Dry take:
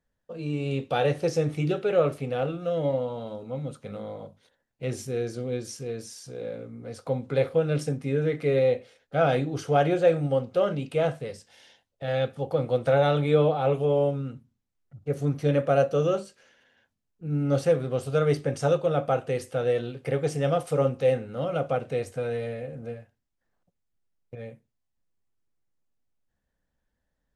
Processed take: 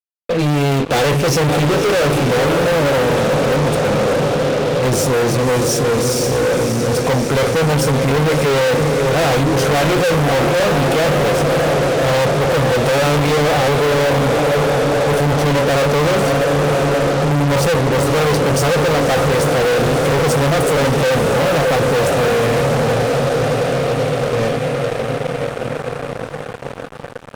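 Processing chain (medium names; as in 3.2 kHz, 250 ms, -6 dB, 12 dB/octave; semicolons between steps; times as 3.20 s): echo that smears into a reverb 579 ms, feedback 77%, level -9.5 dB; fuzz box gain 40 dB, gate -47 dBFS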